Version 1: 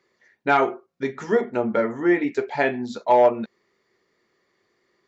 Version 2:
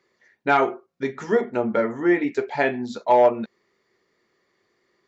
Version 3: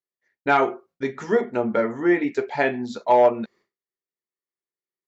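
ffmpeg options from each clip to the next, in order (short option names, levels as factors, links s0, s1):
-af anull
-af "agate=range=0.0224:threshold=0.00398:ratio=3:detection=peak"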